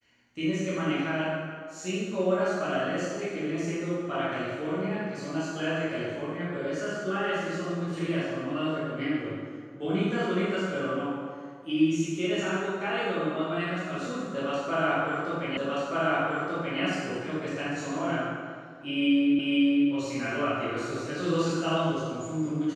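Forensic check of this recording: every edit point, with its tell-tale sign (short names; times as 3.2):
15.57 repeat of the last 1.23 s
19.39 repeat of the last 0.5 s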